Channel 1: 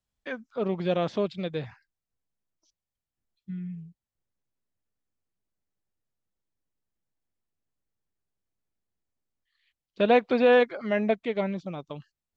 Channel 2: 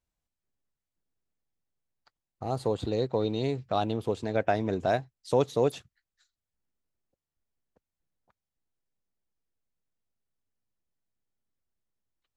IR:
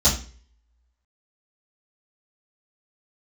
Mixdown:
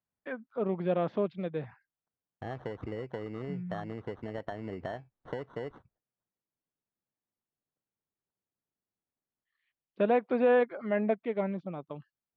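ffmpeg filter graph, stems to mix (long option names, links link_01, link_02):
-filter_complex "[0:a]highpass=120,volume=-2.5dB[link_01];[1:a]agate=range=-28dB:threshold=-57dB:ratio=16:detection=peak,acompressor=threshold=-30dB:ratio=16,acrusher=samples=18:mix=1:aa=0.000001,volume=-3dB[link_02];[link_01][link_02]amix=inputs=2:normalize=0,lowpass=1800,alimiter=limit=-16dB:level=0:latency=1:release=439"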